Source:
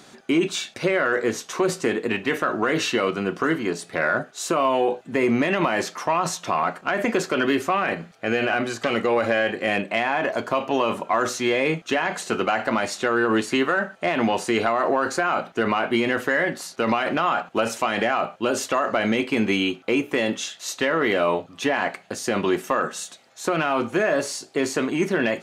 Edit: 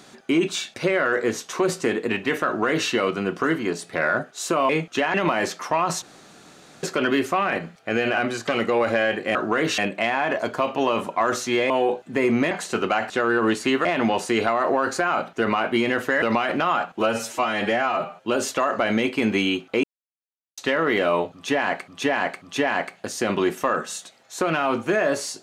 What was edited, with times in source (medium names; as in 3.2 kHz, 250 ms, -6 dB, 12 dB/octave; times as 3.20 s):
2.46–2.89 s: copy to 9.71 s
4.69–5.50 s: swap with 11.63–12.08 s
6.38–7.19 s: room tone
12.67–12.97 s: delete
13.72–14.04 s: delete
16.41–16.79 s: delete
17.55–18.40 s: stretch 1.5×
19.98–20.72 s: mute
21.48–22.02 s: loop, 3 plays